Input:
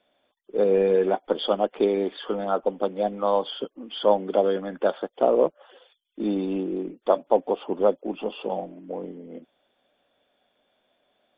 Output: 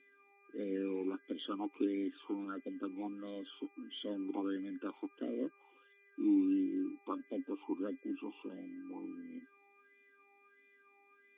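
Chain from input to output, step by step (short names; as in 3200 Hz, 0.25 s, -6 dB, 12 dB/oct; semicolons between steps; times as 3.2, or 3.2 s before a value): buzz 400 Hz, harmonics 6, -51 dBFS -1 dB/oct; vowel sweep i-u 1.5 Hz; gain -1 dB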